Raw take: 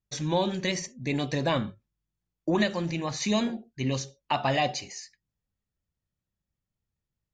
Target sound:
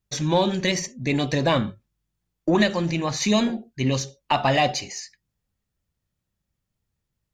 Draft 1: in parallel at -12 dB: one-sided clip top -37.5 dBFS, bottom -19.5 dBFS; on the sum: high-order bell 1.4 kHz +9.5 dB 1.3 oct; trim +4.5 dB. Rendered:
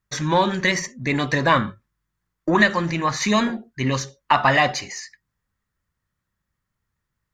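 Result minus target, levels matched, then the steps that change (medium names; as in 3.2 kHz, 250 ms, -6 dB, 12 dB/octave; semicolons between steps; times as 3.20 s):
1 kHz band +2.5 dB
remove: high-order bell 1.4 kHz +9.5 dB 1.3 oct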